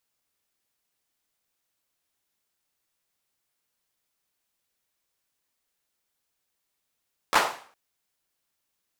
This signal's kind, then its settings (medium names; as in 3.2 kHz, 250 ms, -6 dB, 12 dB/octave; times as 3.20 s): hand clap length 0.41 s, bursts 3, apart 12 ms, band 880 Hz, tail 0.47 s